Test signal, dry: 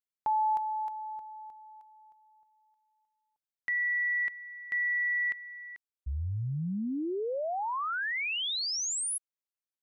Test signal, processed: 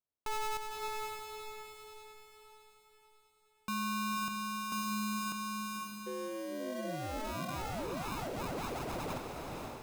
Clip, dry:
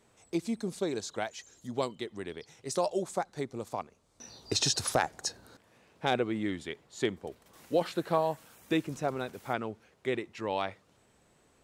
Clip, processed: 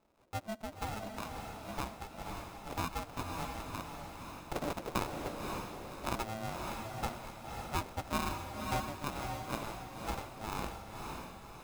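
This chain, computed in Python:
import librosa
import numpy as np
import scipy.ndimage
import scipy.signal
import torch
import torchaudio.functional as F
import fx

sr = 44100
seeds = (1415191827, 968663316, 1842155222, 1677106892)

y = fx.sample_hold(x, sr, seeds[0], rate_hz=1300.0, jitter_pct=0)
y = y * np.sin(2.0 * np.pi * 440.0 * np.arange(len(y)) / sr)
y = fx.echo_diffused(y, sr, ms=553, feedback_pct=45, wet_db=-3)
y = y * 10.0 ** (-5.0 / 20.0)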